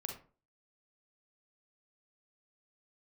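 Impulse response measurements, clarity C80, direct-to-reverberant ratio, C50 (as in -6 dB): 12.5 dB, 2.0 dB, 5.5 dB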